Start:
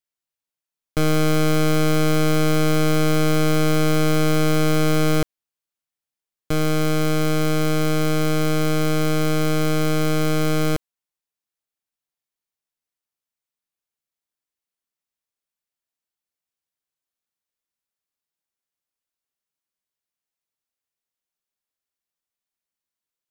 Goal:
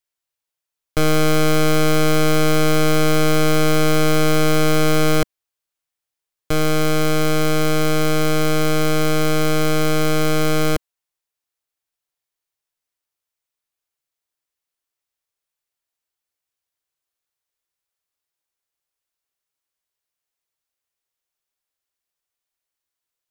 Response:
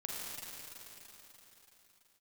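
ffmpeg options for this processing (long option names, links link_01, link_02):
-af "equalizer=frequency=210:width=2.5:gain=-12.5,volume=4dB"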